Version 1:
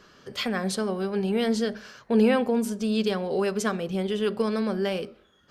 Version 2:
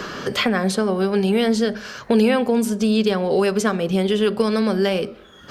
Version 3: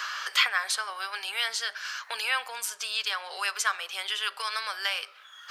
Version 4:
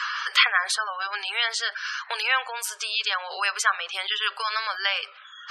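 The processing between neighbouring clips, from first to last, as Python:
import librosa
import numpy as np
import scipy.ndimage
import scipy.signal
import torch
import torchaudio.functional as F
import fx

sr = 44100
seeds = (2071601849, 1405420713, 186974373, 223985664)

y1 = fx.band_squash(x, sr, depth_pct=70)
y1 = F.gain(torch.from_numpy(y1), 6.5).numpy()
y2 = scipy.signal.sosfilt(scipy.signal.butter(4, 1100.0, 'highpass', fs=sr, output='sos'), y1)
y3 = fx.spec_gate(y2, sr, threshold_db=-20, keep='strong')
y3 = fx.high_shelf(y3, sr, hz=4700.0, db=-5.5)
y3 = F.gain(torch.from_numpy(y3), 6.0).numpy()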